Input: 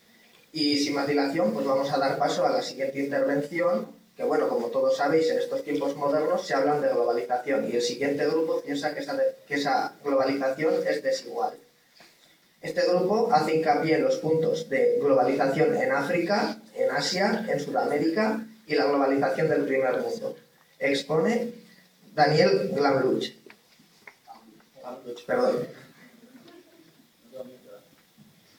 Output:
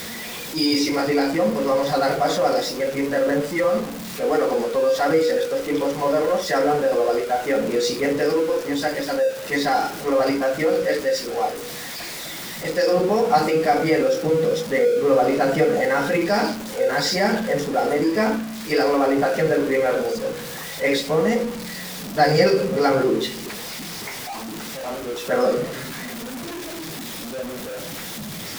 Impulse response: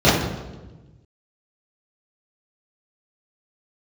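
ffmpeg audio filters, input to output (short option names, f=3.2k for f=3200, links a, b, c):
-af "aeval=exprs='val(0)+0.5*0.0316*sgn(val(0))':c=same,volume=3dB"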